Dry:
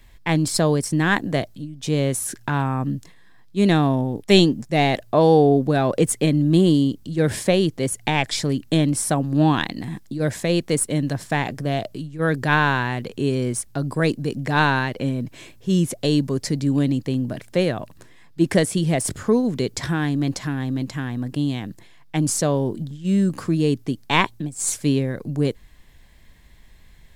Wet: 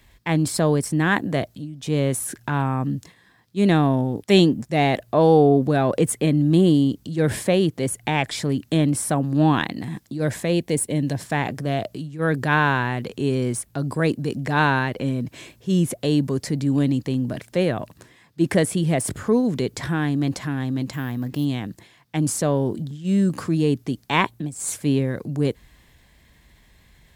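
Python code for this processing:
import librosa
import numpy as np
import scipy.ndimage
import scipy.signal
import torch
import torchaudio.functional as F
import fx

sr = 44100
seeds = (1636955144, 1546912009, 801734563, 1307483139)

y = fx.peak_eq(x, sr, hz=1300.0, db=-14.5, octaves=0.33, at=(10.53, 11.2))
y = fx.resample_bad(y, sr, factor=3, down='none', up='hold', at=(20.93, 21.45))
y = scipy.signal.sosfilt(scipy.signal.butter(2, 48.0, 'highpass', fs=sr, output='sos'), y)
y = fx.transient(y, sr, attack_db=-2, sustain_db=2)
y = fx.dynamic_eq(y, sr, hz=5500.0, q=0.95, threshold_db=-40.0, ratio=4.0, max_db=-6)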